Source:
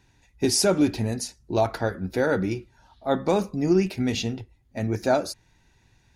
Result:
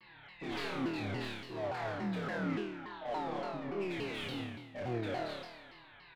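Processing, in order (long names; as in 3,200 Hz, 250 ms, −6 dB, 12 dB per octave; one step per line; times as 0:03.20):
stylus tracing distortion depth 0.22 ms
elliptic low-pass filter 4,000 Hz
low-shelf EQ 180 Hz −5 dB
comb filter 6.2 ms, depth 89%
downward compressor, threshold −28 dBFS, peak gain reduction 13.5 dB
brickwall limiter −28.5 dBFS, peak gain reduction 11 dB
mid-hump overdrive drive 21 dB, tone 2,500 Hz, clips at −28.5 dBFS
flanger 0.44 Hz, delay 6.7 ms, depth 1.2 ms, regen −47%
flutter between parallel walls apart 4.6 metres, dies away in 1.1 s
pitch modulation by a square or saw wave saw down 3.5 Hz, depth 250 cents
level −4.5 dB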